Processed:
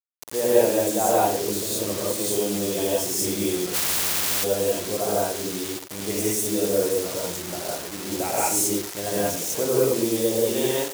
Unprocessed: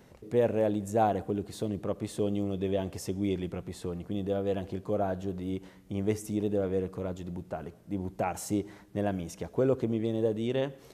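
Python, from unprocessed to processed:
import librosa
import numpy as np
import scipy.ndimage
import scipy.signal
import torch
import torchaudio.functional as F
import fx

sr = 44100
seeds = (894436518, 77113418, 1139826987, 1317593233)

y = fx.peak_eq(x, sr, hz=63.0, db=5.0, octaves=0.48)
y = fx.rev_gated(y, sr, seeds[0], gate_ms=220, shape='rising', drr_db=-7.5)
y = fx.quant_dither(y, sr, seeds[1], bits=6, dither='none')
y = fx.bass_treble(y, sr, bass_db=-12, treble_db=11)
y = y + 10.0 ** (-12.0 / 20.0) * np.pad(y, (int(90 * sr / 1000.0), 0))[:len(y)]
y = fx.spectral_comp(y, sr, ratio=10.0, at=(3.73, 4.43), fade=0.02)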